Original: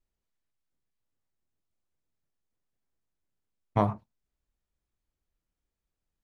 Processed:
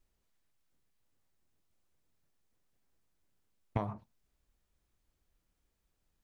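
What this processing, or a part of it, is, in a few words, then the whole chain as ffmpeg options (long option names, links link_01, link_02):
serial compression, leveller first: -af "acompressor=threshold=-28dB:ratio=2,acompressor=threshold=-37dB:ratio=8,volume=6.5dB"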